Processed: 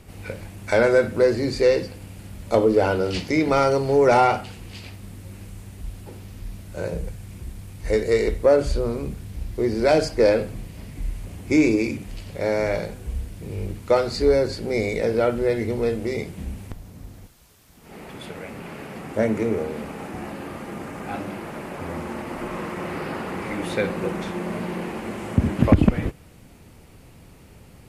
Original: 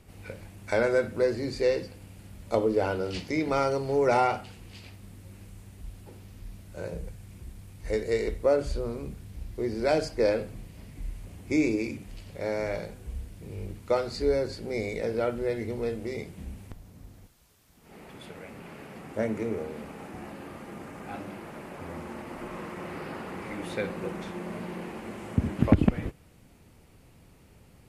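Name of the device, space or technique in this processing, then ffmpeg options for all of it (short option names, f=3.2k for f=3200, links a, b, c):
saturation between pre-emphasis and de-emphasis: -af "highshelf=f=2k:g=11.5,asoftclip=type=tanh:threshold=-12.5dB,highshelf=f=2k:g=-11.5,volume=8dB"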